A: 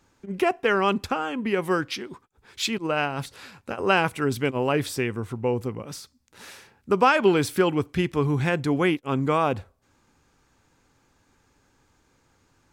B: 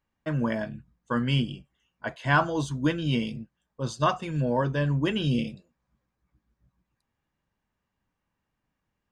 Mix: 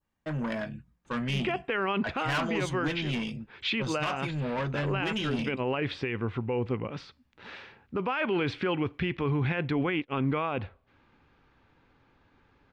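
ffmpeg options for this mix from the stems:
-filter_complex "[0:a]lowpass=f=3.6k:w=0.5412,lowpass=f=3.6k:w=1.3066,alimiter=limit=-15dB:level=0:latency=1:release=339,adelay=1050,volume=0.5dB[a];[1:a]asoftclip=type=tanh:threshold=-26.5dB,volume=-1dB,asplit=2[b][c];[c]apad=whole_len=607652[d];[a][d]sidechaincompress=threshold=-36dB:ratio=8:attack=16:release=158[e];[e][b]amix=inputs=2:normalize=0,adynamicequalizer=threshold=0.00562:dfrequency=2400:dqfactor=1.1:tfrequency=2400:tqfactor=1.1:attack=5:release=100:ratio=0.375:range=3:mode=boostabove:tftype=bell,alimiter=limit=-20.5dB:level=0:latency=1:release=10"

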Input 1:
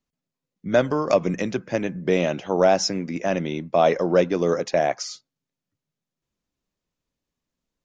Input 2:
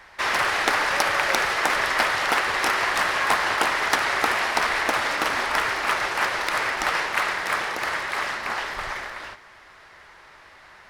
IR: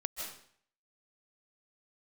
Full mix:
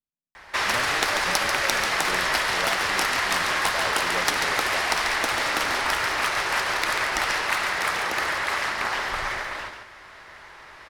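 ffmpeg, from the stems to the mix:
-filter_complex "[0:a]volume=-17dB[a];[1:a]acrossover=split=140|3000[b][c][d];[c]acompressor=threshold=-26dB:ratio=6[e];[b][e][d]amix=inputs=3:normalize=0,adelay=350,volume=2.5dB,asplit=2[f][g];[g]volume=-7dB,aecho=0:1:140:1[h];[a][f][h]amix=inputs=3:normalize=0"

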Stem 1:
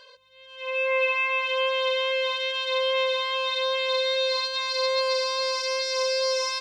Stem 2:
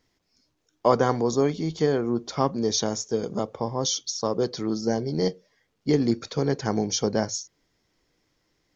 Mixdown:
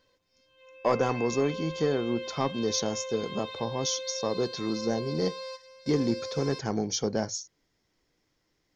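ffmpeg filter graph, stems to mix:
-filter_complex "[0:a]lowshelf=f=490:g=11,acompressor=threshold=-34dB:ratio=2,volume=-8.5dB[a];[1:a]asoftclip=type=tanh:threshold=-10.5dB,volume=-3.5dB,asplit=2[b][c];[c]apad=whole_len=291273[d];[a][d]sidechaingate=range=-13dB:threshold=-60dB:ratio=16:detection=peak[e];[e][b]amix=inputs=2:normalize=0"

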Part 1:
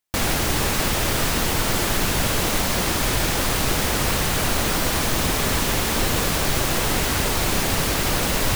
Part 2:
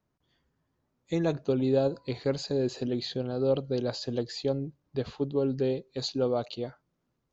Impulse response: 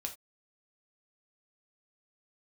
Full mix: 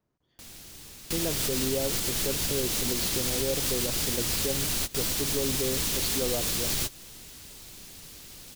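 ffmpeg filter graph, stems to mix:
-filter_complex "[0:a]lowshelf=f=440:g=-9,acrossover=split=290|3000[a][b][c];[b]acompressor=threshold=-42dB:ratio=4[d];[a][d][c]amix=inputs=3:normalize=0,adelay=250,volume=1dB[e];[1:a]volume=-1dB,asplit=2[f][g];[g]apad=whole_len=388426[h];[e][h]sidechaingate=range=-21dB:threshold=-58dB:ratio=16:detection=peak[i];[i][f]amix=inputs=2:normalize=0,equalizer=f=400:t=o:w=1.1:g=3,alimiter=limit=-17.5dB:level=0:latency=1:release=200"

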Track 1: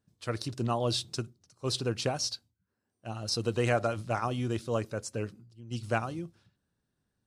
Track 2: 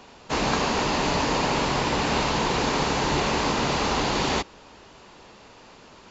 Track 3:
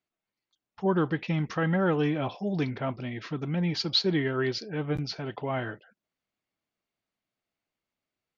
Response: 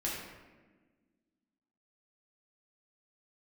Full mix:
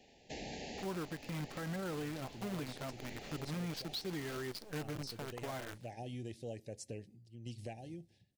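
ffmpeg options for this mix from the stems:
-filter_complex "[0:a]adelay=1750,volume=-3.5dB[a];[1:a]volume=-14dB[b];[2:a]adynamicsmooth=sensitivity=5:basefreq=5.4k,acrusher=bits=6:dc=4:mix=0:aa=0.000001,asoftclip=type=hard:threshold=-17.5dB,volume=-4.5dB[c];[a][b]amix=inputs=2:normalize=0,asuperstop=centerf=1200:order=12:qfactor=1.4,acompressor=threshold=-44dB:ratio=3,volume=0dB[d];[c][d]amix=inputs=2:normalize=0,alimiter=level_in=8.5dB:limit=-24dB:level=0:latency=1:release=445,volume=-8.5dB"

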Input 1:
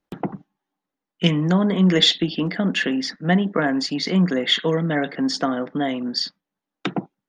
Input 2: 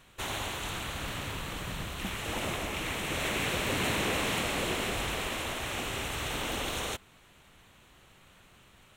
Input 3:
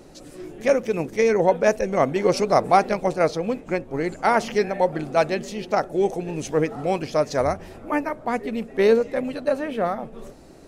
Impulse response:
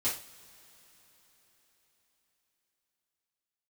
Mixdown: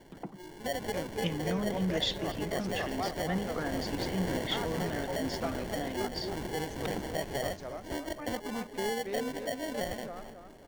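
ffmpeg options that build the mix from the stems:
-filter_complex "[0:a]volume=-15.5dB,asplit=2[a][b];[1:a]adelay=550,volume=-5.5dB[c];[2:a]volume=-8.5dB,asplit=2[d][e];[e]volume=-12dB[f];[b]apad=whole_len=470923[g];[d][g]sidechaincompress=threshold=-44dB:ratio=8:attack=20:release=346[h];[c][h]amix=inputs=2:normalize=0,acrusher=samples=35:mix=1:aa=0.000001,alimiter=level_in=2.5dB:limit=-24dB:level=0:latency=1:release=147,volume=-2.5dB,volume=0dB[i];[f]aecho=0:1:272|544|816|1088|1360:1|0.39|0.152|0.0593|0.0231[j];[a][i][j]amix=inputs=3:normalize=0"

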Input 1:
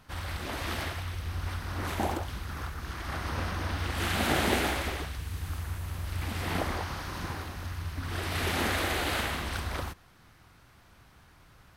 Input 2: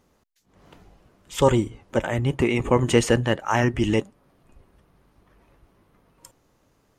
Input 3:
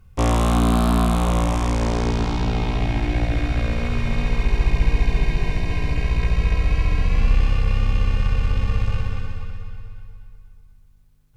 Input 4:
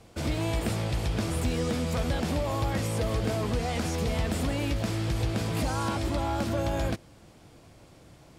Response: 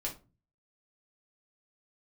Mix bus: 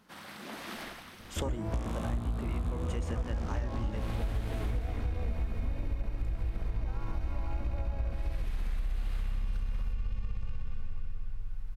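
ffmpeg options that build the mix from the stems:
-filter_complex "[0:a]highpass=f=160:w=0.5412,highpass=f=160:w=1.3066,volume=-7dB[a];[1:a]volume=-7.5dB[b];[2:a]adelay=1550,volume=-8dB[c];[3:a]lowpass=f=1.7k:w=0.5412,lowpass=f=1.7k:w=1.3066,lowshelf=f=110:g=9,adelay=1200,volume=-4.5dB,asplit=2[d][e];[e]volume=-4dB[f];[a][b][c]amix=inputs=3:normalize=0,equalizer=f=210:t=o:w=0.32:g=9.5,acompressor=threshold=-26dB:ratio=6,volume=0dB[g];[f]aecho=0:1:313:1[h];[d][g][h]amix=inputs=3:normalize=0,asubboost=boost=4:cutoff=67,acompressor=threshold=-30dB:ratio=5"

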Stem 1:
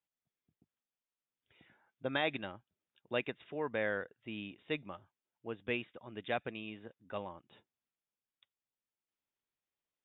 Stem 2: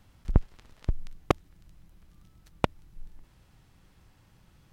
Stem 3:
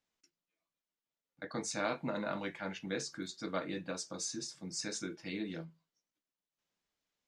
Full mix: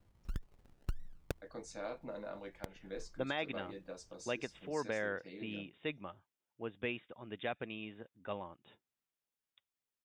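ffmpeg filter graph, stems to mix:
-filter_complex "[0:a]adelay=1150,volume=-0.5dB[a];[1:a]acrusher=samples=33:mix=1:aa=0.000001:lfo=1:lforange=19.8:lforate=1.7,volume=-10dB[b];[2:a]equalizer=f=520:t=o:w=1.2:g=9.5,volume=-13.5dB[c];[a][b][c]amix=inputs=3:normalize=0,alimiter=level_in=1.5dB:limit=-24dB:level=0:latency=1:release=171,volume=-1.5dB"

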